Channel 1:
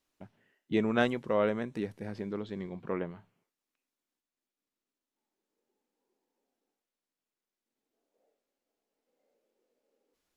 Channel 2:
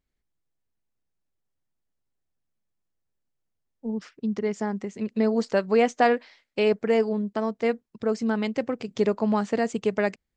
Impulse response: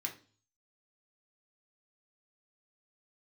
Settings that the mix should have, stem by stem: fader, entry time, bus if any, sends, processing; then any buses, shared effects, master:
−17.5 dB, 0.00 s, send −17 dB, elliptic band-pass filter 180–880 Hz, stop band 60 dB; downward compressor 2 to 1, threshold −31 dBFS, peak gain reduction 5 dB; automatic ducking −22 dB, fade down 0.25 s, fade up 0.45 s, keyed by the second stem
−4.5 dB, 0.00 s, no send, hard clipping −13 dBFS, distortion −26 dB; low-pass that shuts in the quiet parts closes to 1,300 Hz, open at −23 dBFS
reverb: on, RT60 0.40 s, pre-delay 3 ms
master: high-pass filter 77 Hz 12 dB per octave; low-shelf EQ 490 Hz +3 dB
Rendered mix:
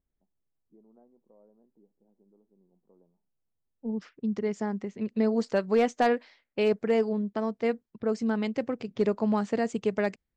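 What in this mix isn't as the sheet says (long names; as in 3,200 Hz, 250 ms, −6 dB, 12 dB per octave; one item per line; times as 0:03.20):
stem 1 −17.5 dB → −28.5 dB
master: missing high-pass filter 77 Hz 12 dB per octave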